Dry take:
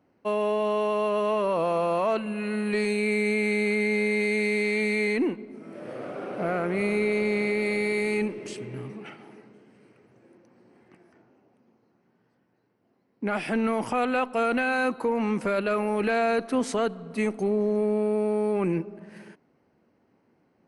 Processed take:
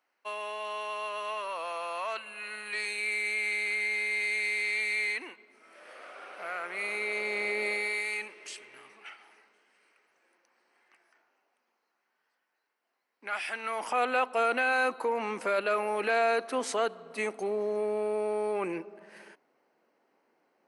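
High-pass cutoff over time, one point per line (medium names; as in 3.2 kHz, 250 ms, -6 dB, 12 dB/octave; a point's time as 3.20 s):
6.53 s 1.3 kHz
7.64 s 570 Hz
8.06 s 1.2 kHz
13.59 s 1.2 kHz
14.03 s 510 Hz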